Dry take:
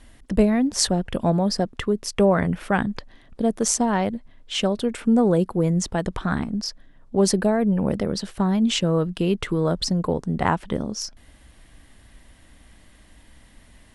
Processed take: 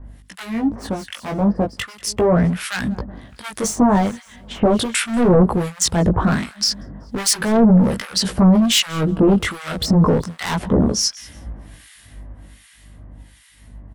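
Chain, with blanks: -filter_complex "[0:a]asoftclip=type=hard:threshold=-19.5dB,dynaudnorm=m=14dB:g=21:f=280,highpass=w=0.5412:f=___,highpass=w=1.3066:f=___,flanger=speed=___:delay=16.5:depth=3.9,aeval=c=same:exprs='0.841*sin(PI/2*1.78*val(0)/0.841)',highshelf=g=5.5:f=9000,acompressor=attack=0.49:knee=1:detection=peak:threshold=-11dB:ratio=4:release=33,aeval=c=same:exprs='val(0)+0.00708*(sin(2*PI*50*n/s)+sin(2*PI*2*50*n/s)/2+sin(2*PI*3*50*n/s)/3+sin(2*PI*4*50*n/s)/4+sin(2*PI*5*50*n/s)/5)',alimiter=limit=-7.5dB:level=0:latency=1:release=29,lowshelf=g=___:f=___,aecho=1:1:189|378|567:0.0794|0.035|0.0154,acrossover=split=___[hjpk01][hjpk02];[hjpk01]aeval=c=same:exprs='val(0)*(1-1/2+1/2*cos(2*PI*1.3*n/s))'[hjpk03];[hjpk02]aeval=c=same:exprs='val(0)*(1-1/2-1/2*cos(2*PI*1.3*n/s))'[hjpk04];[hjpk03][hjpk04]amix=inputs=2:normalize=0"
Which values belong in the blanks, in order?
59, 59, 0.37, 10, 76, 1300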